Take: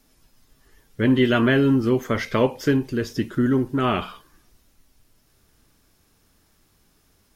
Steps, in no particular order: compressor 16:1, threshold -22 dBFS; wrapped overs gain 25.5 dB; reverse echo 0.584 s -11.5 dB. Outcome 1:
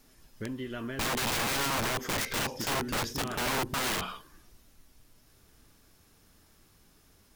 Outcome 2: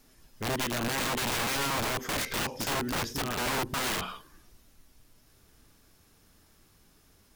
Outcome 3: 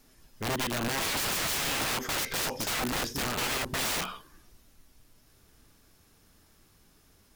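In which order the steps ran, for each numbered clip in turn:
compressor > reverse echo > wrapped overs; reverse echo > compressor > wrapped overs; reverse echo > wrapped overs > compressor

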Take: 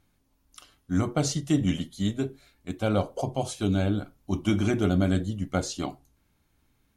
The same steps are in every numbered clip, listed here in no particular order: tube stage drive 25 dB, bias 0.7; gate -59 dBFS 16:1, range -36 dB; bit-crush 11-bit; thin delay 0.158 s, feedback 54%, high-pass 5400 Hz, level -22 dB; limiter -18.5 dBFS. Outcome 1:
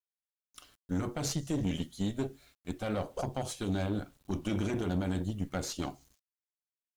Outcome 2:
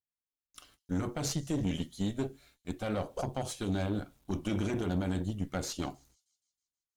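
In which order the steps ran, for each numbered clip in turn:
limiter > gate > thin delay > tube stage > bit-crush; limiter > bit-crush > gate > thin delay > tube stage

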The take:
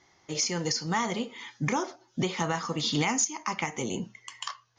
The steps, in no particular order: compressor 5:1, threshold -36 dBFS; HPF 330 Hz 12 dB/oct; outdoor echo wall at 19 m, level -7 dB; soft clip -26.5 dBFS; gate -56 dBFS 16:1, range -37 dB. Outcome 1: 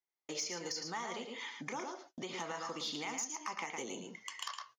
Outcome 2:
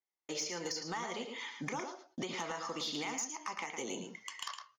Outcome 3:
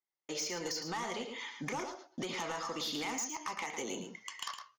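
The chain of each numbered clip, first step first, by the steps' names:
outdoor echo > compressor > soft clip > HPF > gate; HPF > compressor > gate > outdoor echo > soft clip; HPF > soft clip > gate > compressor > outdoor echo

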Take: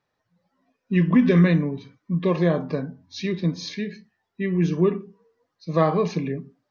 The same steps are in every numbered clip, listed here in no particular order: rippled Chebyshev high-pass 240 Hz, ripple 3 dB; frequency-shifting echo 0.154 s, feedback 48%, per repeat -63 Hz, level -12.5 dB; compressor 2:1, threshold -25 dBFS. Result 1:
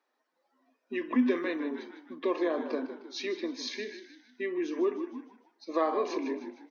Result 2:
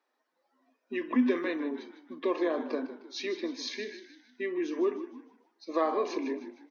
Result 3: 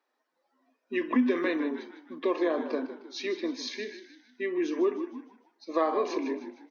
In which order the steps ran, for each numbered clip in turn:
frequency-shifting echo > compressor > rippled Chebyshev high-pass; compressor > frequency-shifting echo > rippled Chebyshev high-pass; frequency-shifting echo > rippled Chebyshev high-pass > compressor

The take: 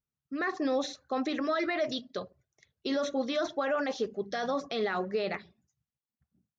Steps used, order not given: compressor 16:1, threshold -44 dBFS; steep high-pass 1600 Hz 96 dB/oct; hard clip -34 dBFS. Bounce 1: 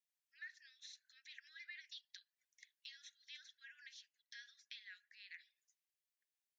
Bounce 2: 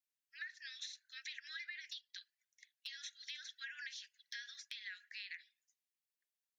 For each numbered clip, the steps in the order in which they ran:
compressor > steep high-pass > hard clip; steep high-pass > compressor > hard clip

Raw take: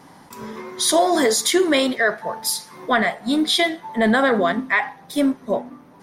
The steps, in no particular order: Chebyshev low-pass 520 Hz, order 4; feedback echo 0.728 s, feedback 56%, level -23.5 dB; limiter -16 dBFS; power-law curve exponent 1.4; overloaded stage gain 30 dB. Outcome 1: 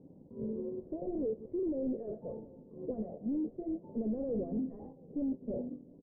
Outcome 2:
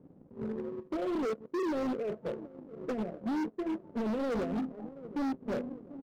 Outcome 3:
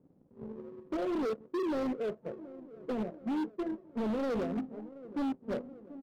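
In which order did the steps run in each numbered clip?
limiter > overloaded stage > feedback echo > power-law curve > Chebyshev low-pass; feedback echo > limiter > Chebyshev low-pass > overloaded stage > power-law curve; Chebyshev low-pass > power-law curve > limiter > feedback echo > overloaded stage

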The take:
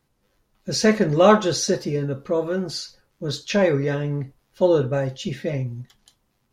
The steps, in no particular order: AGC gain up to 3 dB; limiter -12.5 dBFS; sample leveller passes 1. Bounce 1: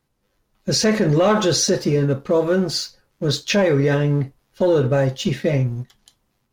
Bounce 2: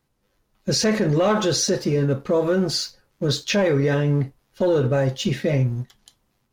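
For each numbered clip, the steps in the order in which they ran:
sample leveller > limiter > AGC; AGC > sample leveller > limiter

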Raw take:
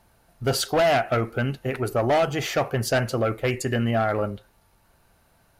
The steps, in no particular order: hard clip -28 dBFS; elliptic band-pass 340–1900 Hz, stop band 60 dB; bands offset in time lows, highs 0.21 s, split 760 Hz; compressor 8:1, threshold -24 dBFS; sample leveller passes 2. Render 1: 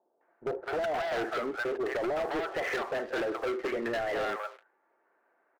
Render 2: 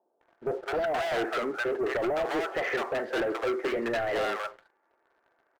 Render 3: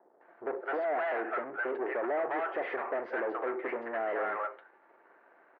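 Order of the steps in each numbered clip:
elliptic band-pass > sample leveller > compressor > bands offset in time > hard clip; elliptic band-pass > compressor > hard clip > bands offset in time > sample leveller; bands offset in time > compressor > hard clip > sample leveller > elliptic band-pass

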